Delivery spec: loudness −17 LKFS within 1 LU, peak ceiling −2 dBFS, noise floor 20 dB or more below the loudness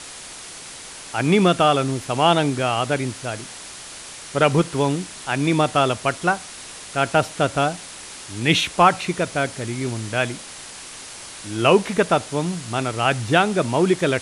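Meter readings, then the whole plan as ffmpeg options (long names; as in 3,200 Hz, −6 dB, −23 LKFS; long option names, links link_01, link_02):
background noise floor −38 dBFS; target noise floor −41 dBFS; integrated loudness −20.5 LKFS; sample peak −2.0 dBFS; target loudness −17.0 LKFS
→ -af "afftdn=noise_reduction=6:noise_floor=-38"
-af "volume=3.5dB,alimiter=limit=-2dB:level=0:latency=1"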